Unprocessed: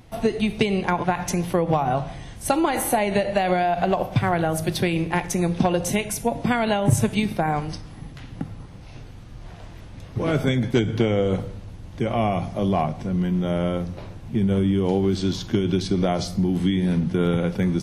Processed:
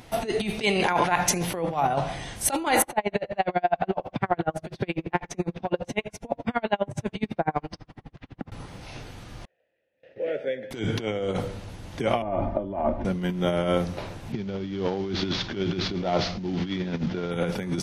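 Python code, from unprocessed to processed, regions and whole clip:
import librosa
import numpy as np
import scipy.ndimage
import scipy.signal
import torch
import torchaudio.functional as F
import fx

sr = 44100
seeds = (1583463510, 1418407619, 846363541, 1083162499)

y = fx.chain(x, sr, fx.low_shelf(hz=480.0, db=-6.0),
    fx.env_flatten(amount_pct=50), at=(0.62, 1.12))
y = fx.chain(y, sr, fx.spacing_loss(db_at_10k=23),
    fx.tremolo_db(hz=12.0, depth_db=38), at=(2.82, 8.52))
y = fx.chain(y, sr, fx.high_shelf(hz=5400.0, db=-11.0),
    fx.gate_hold(open_db=-29.0, close_db=-35.0, hold_ms=71.0, range_db=-21, attack_ms=1.4, release_ms=100.0),
    fx.vowel_filter(vowel='e'), at=(9.45, 10.71))
y = fx.chain(y, sr, fx.lowpass(hz=1100.0, slope=12),
    fx.low_shelf(hz=62.0, db=8.0),
    fx.comb(ms=3.3, depth=0.96), at=(12.22, 13.05))
y = fx.chain(y, sr, fx.cvsd(bps=32000),
    fx.lowpass(hz=4500.0, slope=12), at=(14.32, 17.31))
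y = fx.over_compress(y, sr, threshold_db=-24.0, ratio=-0.5)
y = fx.low_shelf(y, sr, hz=270.0, db=-10.5)
y = fx.notch(y, sr, hz=1100.0, q=24.0)
y = F.gain(torch.from_numpy(y), 4.0).numpy()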